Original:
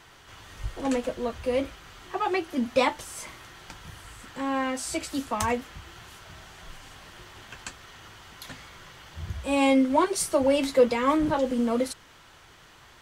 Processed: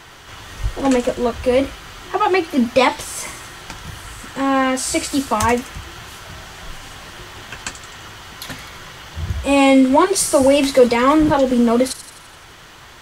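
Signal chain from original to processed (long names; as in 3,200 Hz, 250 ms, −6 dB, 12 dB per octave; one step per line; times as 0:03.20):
in parallel at +1 dB: brickwall limiter −18 dBFS, peak gain reduction 9 dB
on the sum: delay with a high-pass on its return 85 ms, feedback 60%, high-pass 4,500 Hz, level −8.5 dB
level +4.5 dB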